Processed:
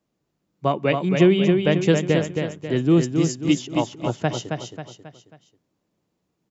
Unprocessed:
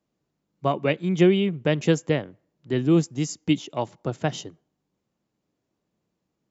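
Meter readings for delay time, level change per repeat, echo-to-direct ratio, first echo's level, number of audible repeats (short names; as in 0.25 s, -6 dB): 0.27 s, -7.5 dB, -4.0 dB, -5.0 dB, 4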